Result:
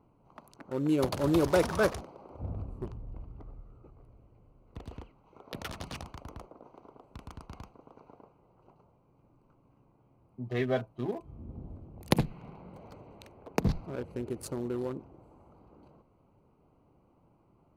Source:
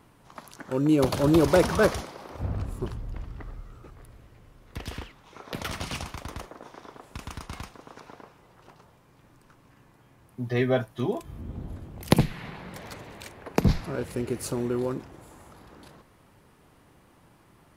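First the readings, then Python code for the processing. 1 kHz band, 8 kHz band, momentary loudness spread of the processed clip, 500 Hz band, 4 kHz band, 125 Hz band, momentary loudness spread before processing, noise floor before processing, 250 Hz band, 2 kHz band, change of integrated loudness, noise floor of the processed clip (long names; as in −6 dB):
−5.5 dB, −7.0 dB, 23 LU, −5.5 dB, −6.5 dB, −6.5 dB, 22 LU, −59 dBFS, −6.0 dB, −5.5 dB, −5.0 dB, −66 dBFS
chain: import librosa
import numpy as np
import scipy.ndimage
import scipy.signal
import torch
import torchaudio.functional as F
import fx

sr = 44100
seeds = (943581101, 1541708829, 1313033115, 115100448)

y = fx.wiener(x, sr, points=25)
y = fx.low_shelf(y, sr, hz=390.0, db=-3.0)
y = F.gain(torch.from_numpy(y), -4.0).numpy()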